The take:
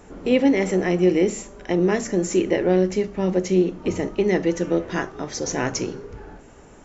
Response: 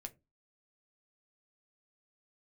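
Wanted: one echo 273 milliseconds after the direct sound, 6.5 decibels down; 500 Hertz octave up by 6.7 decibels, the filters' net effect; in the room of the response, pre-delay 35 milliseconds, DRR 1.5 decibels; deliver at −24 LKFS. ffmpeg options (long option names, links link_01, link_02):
-filter_complex "[0:a]equalizer=frequency=500:width_type=o:gain=9,aecho=1:1:273:0.473,asplit=2[link_01][link_02];[1:a]atrim=start_sample=2205,adelay=35[link_03];[link_02][link_03]afir=irnorm=-1:irlink=0,volume=3dB[link_04];[link_01][link_04]amix=inputs=2:normalize=0,volume=-10dB"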